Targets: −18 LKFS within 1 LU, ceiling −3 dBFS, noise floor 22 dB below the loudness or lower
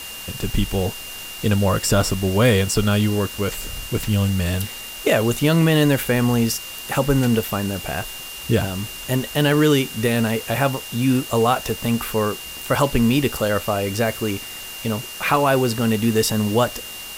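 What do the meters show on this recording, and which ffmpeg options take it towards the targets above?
interfering tone 2,800 Hz; level of the tone −35 dBFS; background noise floor −34 dBFS; target noise floor −43 dBFS; integrated loudness −20.5 LKFS; sample peak −4.0 dBFS; target loudness −18.0 LKFS
→ -af "bandreject=frequency=2800:width=30"
-af "afftdn=noise_reduction=9:noise_floor=-34"
-af "volume=2.5dB,alimiter=limit=-3dB:level=0:latency=1"

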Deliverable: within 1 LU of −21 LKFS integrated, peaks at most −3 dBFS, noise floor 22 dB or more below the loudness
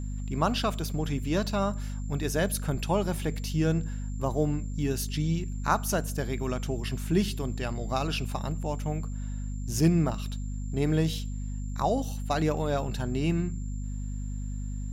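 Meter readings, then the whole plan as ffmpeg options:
mains hum 50 Hz; hum harmonics up to 250 Hz; level of the hum −31 dBFS; interfering tone 7,300 Hz; level of the tone −53 dBFS; integrated loudness −30.0 LKFS; sample peak −10.5 dBFS; target loudness −21.0 LKFS
→ -af "bandreject=frequency=50:width_type=h:width=6,bandreject=frequency=100:width_type=h:width=6,bandreject=frequency=150:width_type=h:width=6,bandreject=frequency=200:width_type=h:width=6,bandreject=frequency=250:width_type=h:width=6"
-af "bandreject=frequency=7300:width=30"
-af "volume=9dB,alimiter=limit=-3dB:level=0:latency=1"

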